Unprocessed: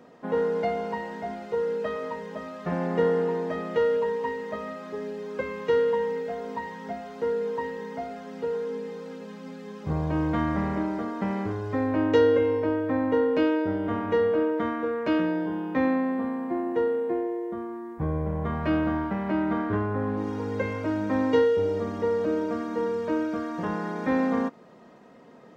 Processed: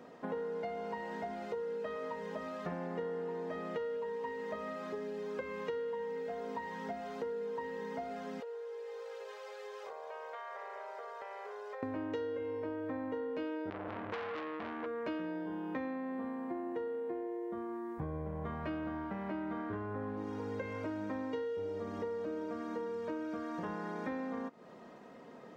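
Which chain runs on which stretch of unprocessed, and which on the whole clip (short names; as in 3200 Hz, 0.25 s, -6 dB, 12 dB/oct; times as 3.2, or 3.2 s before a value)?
8.4–11.83 brick-wall FIR high-pass 400 Hz + compressor 10:1, threshold -40 dBFS
13.7–14.86 low shelf 210 Hz +7.5 dB + core saturation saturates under 1900 Hz
whole clip: tone controls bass -3 dB, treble -1 dB; compressor 6:1, threshold -36 dBFS; gain -1 dB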